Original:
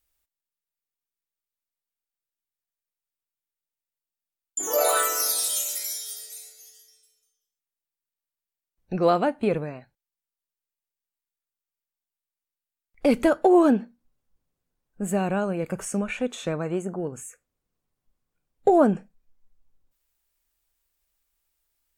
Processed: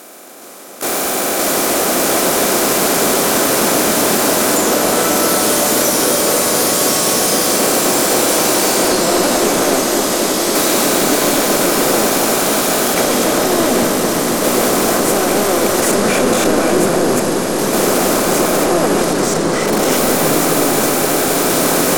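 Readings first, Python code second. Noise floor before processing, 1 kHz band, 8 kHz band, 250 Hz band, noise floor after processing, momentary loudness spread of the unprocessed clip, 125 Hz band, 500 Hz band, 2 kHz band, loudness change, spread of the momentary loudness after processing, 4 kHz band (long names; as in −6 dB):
below −85 dBFS, +15.0 dB, +19.0 dB, +12.5 dB, −18 dBFS, 15 LU, +12.0 dB, +13.5 dB, +20.0 dB, +11.0 dB, 2 LU, +21.5 dB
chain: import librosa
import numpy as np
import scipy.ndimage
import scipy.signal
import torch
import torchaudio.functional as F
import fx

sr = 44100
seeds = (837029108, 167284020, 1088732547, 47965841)

y = fx.bin_compress(x, sr, power=0.4)
y = fx.recorder_agc(y, sr, target_db=-9.5, rise_db_per_s=31.0, max_gain_db=30)
y = scipy.signal.sosfilt(scipy.signal.butter(2, 260.0, 'highpass', fs=sr, output='sos'), y)
y = fx.notch(y, sr, hz=910.0, q=12.0)
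y = fx.transient(y, sr, attack_db=-7, sustain_db=6)
y = fx.level_steps(y, sr, step_db=22)
y = np.clip(y, -10.0 ** (-21.0 / 20.0), 10.0 ** (-21.0 / 20.0))
y = fx.echo_pitch(y, sr, ms=413, semitones=-3, count=3, db_per_echo=-3.0)
y = fx.echo_wet_lowpass(y, sr, ms=261, feedback_pct=82, hz=1900.0, wet_db=-6.0)
y = F.gain(torch.from_numpy(y), 6.5).numpy()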